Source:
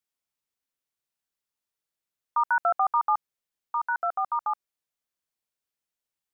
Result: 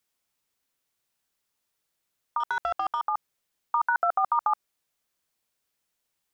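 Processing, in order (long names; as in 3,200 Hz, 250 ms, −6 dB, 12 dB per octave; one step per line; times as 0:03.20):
in parallel at −2 dB: brickwall limiter −25.5 dBFS, peak gain reduction 10 dB
0:02.40–0:03.01: on the sum: leveller curve on the samples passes 1
compressor whose output falls as the input rises −25 dBFS, ratio −1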